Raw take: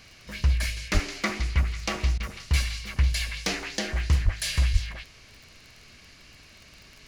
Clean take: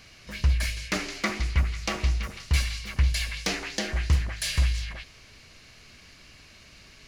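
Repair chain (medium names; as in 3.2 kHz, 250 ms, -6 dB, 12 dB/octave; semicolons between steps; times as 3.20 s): de-click; 0.93–1.05 s: high-pass 140 Hz 24 dB/octave; 4.24–4.36 s: high-pass 140 Hz 24 dB/octave; 4.72–4.84 s: high-pass 140 Hz 24 dB/octave; interpolate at 2.18 s, 18 ms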